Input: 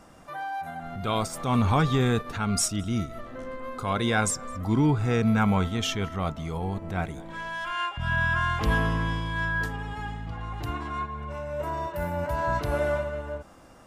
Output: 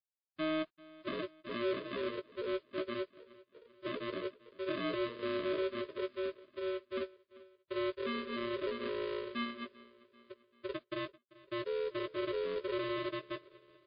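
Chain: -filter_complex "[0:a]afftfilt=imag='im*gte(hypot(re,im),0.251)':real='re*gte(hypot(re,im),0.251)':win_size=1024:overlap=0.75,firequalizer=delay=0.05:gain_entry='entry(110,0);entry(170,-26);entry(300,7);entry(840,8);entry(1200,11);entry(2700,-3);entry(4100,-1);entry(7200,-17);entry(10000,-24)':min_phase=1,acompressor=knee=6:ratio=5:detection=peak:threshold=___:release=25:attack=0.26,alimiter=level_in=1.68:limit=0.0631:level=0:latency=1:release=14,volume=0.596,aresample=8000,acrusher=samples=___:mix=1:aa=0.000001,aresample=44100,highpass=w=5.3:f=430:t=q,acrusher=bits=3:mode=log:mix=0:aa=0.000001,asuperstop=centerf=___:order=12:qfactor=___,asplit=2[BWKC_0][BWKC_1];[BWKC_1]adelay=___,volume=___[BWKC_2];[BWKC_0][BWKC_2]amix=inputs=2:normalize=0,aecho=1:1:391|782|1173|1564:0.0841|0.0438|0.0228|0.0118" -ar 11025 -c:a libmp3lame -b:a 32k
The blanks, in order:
0.0355, 17, 780, 2.7, 16, 0.398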